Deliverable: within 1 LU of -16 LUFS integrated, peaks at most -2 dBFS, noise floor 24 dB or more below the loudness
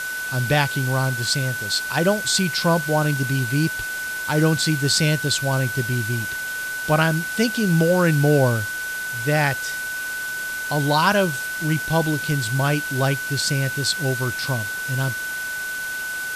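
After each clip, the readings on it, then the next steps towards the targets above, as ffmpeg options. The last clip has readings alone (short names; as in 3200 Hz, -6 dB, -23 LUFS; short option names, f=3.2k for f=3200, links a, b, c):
steady tone 1500 Hz; tone level -26 dBFS; noise floor -28 dBFS; noise floor target -46 dBFS; loudness -21.5 LUFS; peak -3.0 dBFS; loudness target -16.0 LUFS
-> -af "bandreject=f=1.5k:w=30"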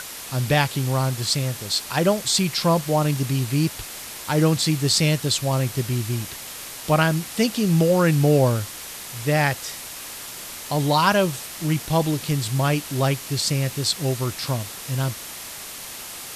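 steady tone none; noise floor -36 dBFS; noise floor target -46 dBFS
-> -af "afftdn=nr=10:nf=-36"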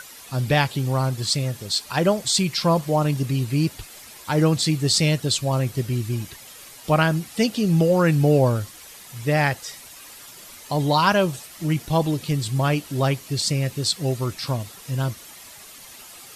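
noise floor -43 dBFS; noise floor target -46 dBFS
-> -af "afftdn=nr=6:nf=-43"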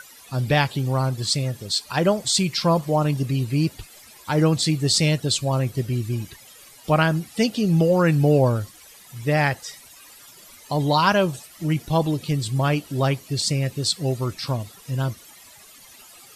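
noise floor -48 dBFS; loudness -22.0 LUFS; peak -3.5 dBFS; loudness target -16.0 LUFS
-> -af "volume=6dB,alimiter=limit=-2dB:level=0:latency=1"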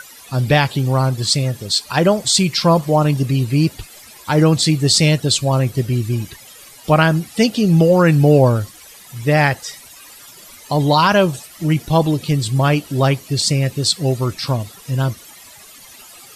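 loudness -16.5 LUFS; peak -2.0 dBFS; noise floor -42 dBFS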